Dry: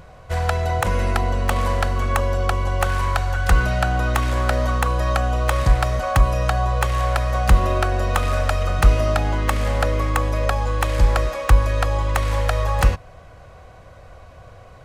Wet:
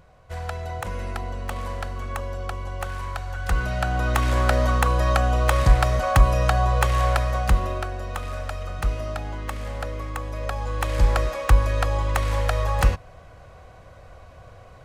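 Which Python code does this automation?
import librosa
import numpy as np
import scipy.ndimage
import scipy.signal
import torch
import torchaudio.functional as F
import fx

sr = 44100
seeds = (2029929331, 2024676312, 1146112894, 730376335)

y = fx.gain(x, sr, db=fx.line((3.22, -10.0), (4.33, 0.0), (7.09, 0.0), (7.97, -10.5), (10.24, -10.5), (11.04, -2.5)))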